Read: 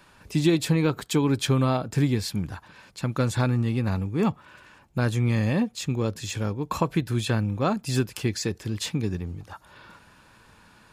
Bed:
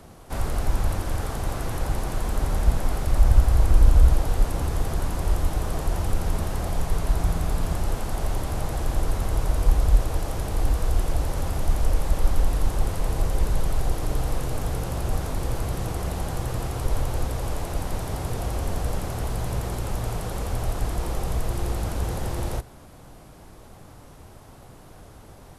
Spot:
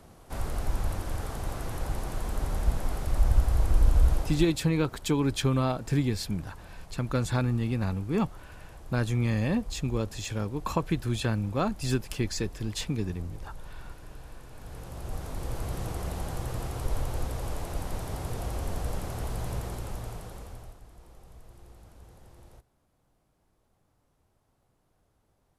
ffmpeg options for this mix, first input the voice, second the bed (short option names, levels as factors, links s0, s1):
-filter_complex "[0:a]adelay=3950,volume=0.668[s0];[1:a]volume=2.82,afade=t=out:st=4.16:d=0.42:silence=0.188365,afade=t=in:st=14.52:d=1.24:silence=0.177828,afade=t=out:st=19.5:d=1.3:silence=0.105925[s1];[s0][s1]amix=inputs=2:normalize=0"